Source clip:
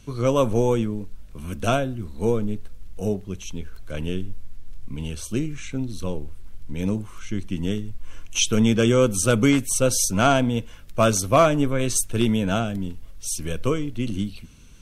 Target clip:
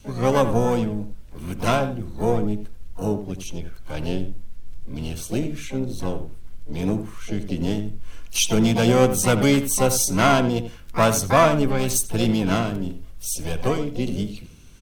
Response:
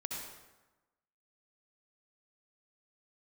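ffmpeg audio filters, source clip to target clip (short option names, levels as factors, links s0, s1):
-filter_complex "[0:a]adynamicequalizer=threshold=0.0158:dfrequency=370:dqfactor=3.3:tfrequency=370:tqfactor=3.3:attack=5:release=100:ratio=0.375:range=1.5:mode=cutabove:tftype=bell,asplit=3[s0][s1][s2];[s1]asetrate=66075,aresample=44100,atempo=0.66742,volume=0.398[s3];[s2]asetrate=88200,aresample=44100,atempo=0.5,volume=0.2[s4];[s0][s3][s4]amix=inputs=3:normalize=0,asplit=2[s5][s6];[s6]adelay=86,lowpass=f=2200:p=1,volume=0.316,asplit=2[s7][s8];[s8]adelay=86,lowpass=f=2200:p=1,volume=0.15[s9];[s7][s9]amix=inputs=2:normalize=0[s10];[s5][s10]amix=inputs=2:normalize=0"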